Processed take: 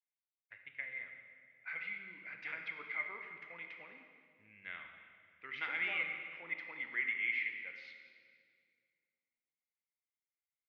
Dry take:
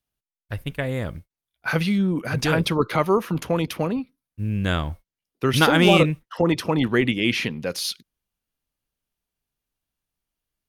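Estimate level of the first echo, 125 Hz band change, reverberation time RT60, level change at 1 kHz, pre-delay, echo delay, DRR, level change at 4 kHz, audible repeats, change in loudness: no echo, under -40 dB, 2.2 s, -25.5 dB, 18 ms, no echo, 4.0 dB, -25.5 dB, no echo, -17.5 dB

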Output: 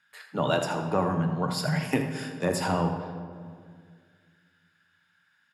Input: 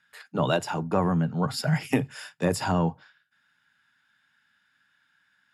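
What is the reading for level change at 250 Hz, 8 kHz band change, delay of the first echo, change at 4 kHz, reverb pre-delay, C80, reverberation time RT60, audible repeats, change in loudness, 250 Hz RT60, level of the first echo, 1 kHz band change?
-2.0 dB, -0.5 dB, 80 ms, 0.0 dB, 17 ms, 7.0 dB, 2.0 s, 1, -1.5 dB, 2.5 s, -11.5 dB, 0.0 dB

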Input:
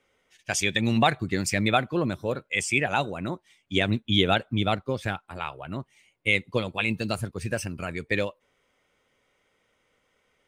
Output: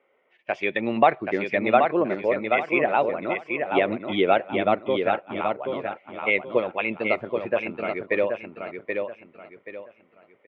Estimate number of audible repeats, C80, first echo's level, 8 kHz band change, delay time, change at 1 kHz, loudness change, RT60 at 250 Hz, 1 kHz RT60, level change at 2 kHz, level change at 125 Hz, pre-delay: 3, no reverb, -5.0 dB, under -30 dB, 779 ms, +6.0 dB, +2.0 dB, no reverb, no reverb, +1.0 dB, -11.0 dB, no reverb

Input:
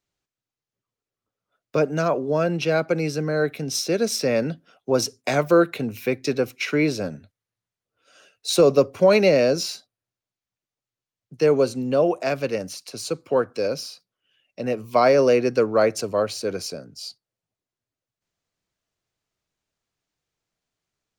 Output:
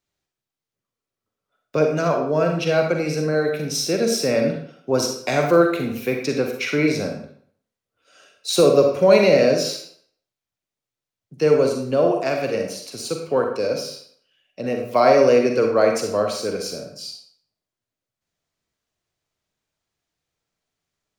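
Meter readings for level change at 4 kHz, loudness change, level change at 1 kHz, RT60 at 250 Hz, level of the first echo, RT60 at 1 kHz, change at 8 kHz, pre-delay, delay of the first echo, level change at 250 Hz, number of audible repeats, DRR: +2.0 dB, +2.0 dB, +2.5 dB, 0.55 s, no echo, 0.60 s, +2.0 dB, 38 ms, no echo, +1.5 dB, no echo, 2.5 dB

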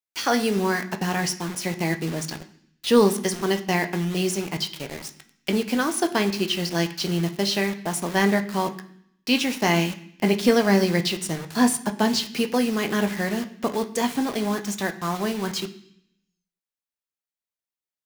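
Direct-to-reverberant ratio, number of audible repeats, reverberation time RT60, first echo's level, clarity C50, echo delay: 6.0 dB, no echo, 0.65 s, no echo, 14.0 dB, no echo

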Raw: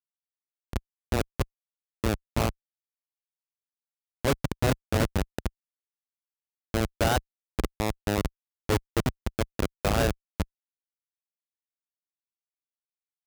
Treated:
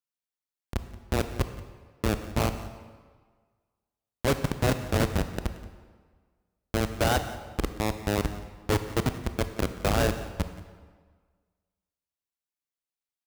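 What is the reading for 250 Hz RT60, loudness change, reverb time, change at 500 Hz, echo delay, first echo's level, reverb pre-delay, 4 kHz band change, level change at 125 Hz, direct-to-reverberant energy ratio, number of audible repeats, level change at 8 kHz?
1.5 s, +0.5 dB, 1.6 s, +0.5 dB, 177 ms, -18.5 dB, 22 ms, +0.5 dB, +0.5 dB, 9.0 dB, 1, +0.5 dB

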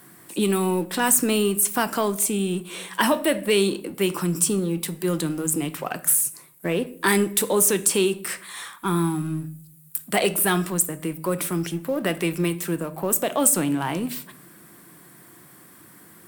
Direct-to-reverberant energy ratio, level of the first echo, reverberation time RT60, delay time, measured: 12.0 dB, no echo, 0.60 s, no echo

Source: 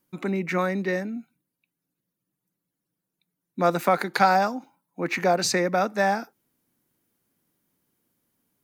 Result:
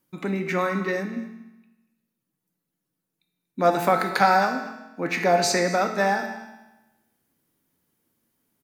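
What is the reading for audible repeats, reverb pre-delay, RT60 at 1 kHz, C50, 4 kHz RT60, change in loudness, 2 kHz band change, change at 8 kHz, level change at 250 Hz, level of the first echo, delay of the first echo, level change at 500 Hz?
1, 5 ms, 1.1 s, 7.0 dB, 1.0 s, +1.0 dB, +2.0 dB, +1.5 dB, +0.5 dB, -18.5 dB, 237 ms, +1.5 dB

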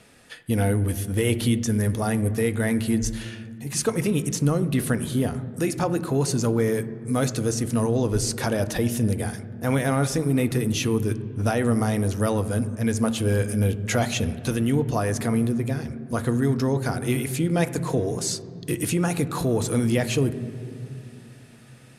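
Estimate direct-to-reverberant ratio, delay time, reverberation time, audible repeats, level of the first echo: 11.0 dB, no echo, 2.5 s, no echo, no echo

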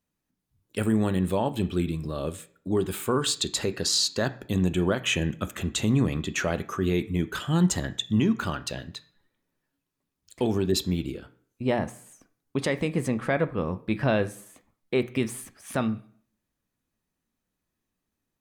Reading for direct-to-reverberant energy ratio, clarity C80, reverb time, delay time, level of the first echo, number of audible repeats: 10.0 dB, 20.0 dB, 0.50 s, no echo, no echo, no echo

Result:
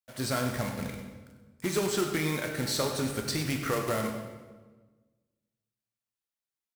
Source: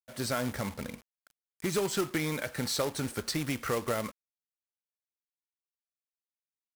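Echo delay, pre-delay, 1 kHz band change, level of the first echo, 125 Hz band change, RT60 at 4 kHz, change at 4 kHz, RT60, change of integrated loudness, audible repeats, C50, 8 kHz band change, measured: 97 ms, 8 ms, +2.0 dB, -12.5 dB, +3.5 dB, 1.0 s, +2.0 dB, 1.3 s, +2.0 dB, 1, 5.0 dB, +1.5 dB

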